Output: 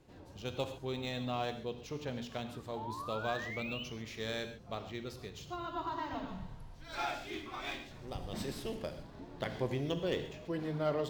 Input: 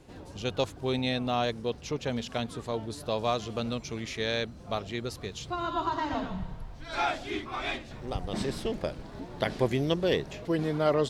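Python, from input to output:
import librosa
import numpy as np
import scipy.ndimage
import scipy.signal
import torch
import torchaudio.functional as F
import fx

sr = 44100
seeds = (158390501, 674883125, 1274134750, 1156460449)

y = fx.tracing_dist(x, sr, depth_ms=0.033)
y = fx.spec_paint(y, sr, seeds[0], shape='rise', start_s=2.76, length_s=1.08, low_hz=820.0, high_hz=3100.0, level_db=-35.0)
y = fx.high_shelf(y, sr, hz=5900.0, db=10.0, at=(6.28, 9.03))
y = fx.rev_gated(y, sr, seeds[1], gate_ms=160, shape='flat', drr_db=7.5)
y = np.interp(np.arange(len(y)), np.arange(len(y))[::2], y[::2])
y = y * 10.0 ** (-9.0 / 20.0)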